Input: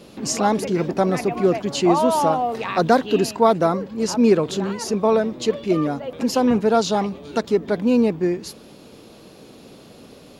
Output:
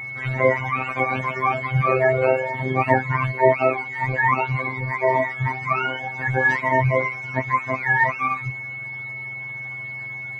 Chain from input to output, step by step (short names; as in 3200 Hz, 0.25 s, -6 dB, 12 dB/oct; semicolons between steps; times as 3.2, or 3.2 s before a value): spectrum mirrored in octaves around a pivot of 650 Hz; robotiser 130 Hz; whine 2200 Hz -33 dBFS; gain +3 dB